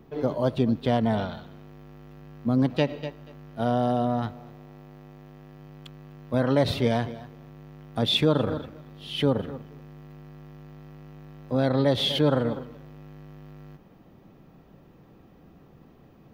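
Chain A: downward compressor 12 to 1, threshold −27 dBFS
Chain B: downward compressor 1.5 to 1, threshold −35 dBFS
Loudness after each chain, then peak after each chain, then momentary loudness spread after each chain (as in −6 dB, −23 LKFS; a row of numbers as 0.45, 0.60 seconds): −35.5, −31.5 LKFS; −16.5, −15.5 dBFS; 22, 19 LU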